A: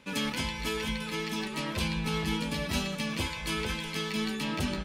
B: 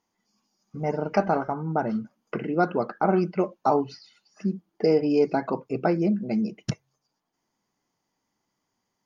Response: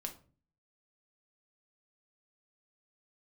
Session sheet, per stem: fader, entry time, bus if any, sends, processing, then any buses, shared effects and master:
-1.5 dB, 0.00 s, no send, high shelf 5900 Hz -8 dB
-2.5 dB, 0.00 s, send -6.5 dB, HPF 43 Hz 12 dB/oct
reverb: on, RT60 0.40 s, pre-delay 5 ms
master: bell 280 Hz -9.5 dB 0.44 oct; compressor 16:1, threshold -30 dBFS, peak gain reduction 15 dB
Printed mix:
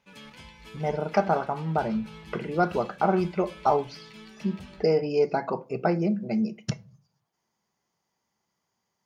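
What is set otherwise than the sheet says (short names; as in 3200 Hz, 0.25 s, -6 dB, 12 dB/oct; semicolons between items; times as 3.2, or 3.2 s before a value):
stem A -1.5 dB -> -13.5 dB; master: missing compressor 16:1, threshold -30 dBFS, peak gain reduction 15 dB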